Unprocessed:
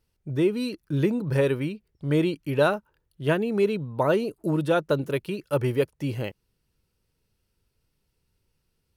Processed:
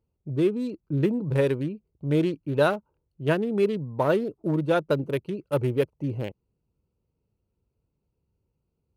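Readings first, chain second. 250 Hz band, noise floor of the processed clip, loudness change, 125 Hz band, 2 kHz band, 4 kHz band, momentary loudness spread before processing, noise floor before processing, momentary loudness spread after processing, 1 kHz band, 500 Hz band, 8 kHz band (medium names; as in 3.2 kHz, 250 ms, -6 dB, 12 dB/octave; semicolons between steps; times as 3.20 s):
0.0 dB, -79 dBFS, -0.5 dB, 0.0 dB, -1.5 dB, -3.0 dB, 8 LU, -76 dBFS, 8 LU, -0.5 dB, -0.5 dB, no reading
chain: local Wiener filter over 25 samples; high-pass 48 Hz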